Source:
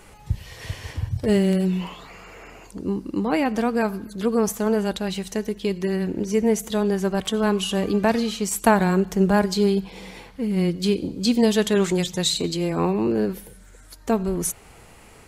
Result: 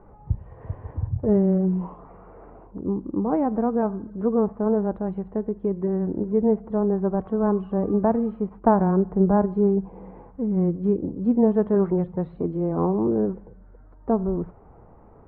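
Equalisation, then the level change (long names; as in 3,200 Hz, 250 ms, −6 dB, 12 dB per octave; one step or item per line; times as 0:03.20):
low-pass filter 1,100 Hz 24 dB per octave
high-frequency loss of the air 170 metres
0.0 dB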